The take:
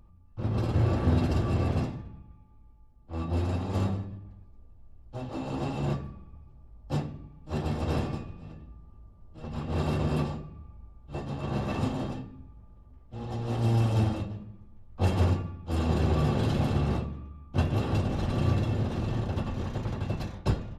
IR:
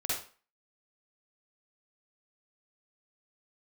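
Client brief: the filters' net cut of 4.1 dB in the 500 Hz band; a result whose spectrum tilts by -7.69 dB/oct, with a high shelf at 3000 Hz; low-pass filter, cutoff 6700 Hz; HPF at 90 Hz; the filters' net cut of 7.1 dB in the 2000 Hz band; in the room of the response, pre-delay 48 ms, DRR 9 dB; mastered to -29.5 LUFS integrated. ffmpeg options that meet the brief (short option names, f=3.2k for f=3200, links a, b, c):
-filter_complex "[0:a]highpass=90,lowpass=6.7k,equalizer=f=500:t=o:g=-5,equalizer=f=2k:t=o:g=-7.5,highshelf=f=3k:g=-5.5,asplit=2[a][b];[1:a]atrim=start_sample=2205,adelay=48[c];[b][c]afir=irnorm=-1:irlink=0,volume=-14.5dB[d];[a][d]amix=inputs=2:normalize=0,volume=2dB"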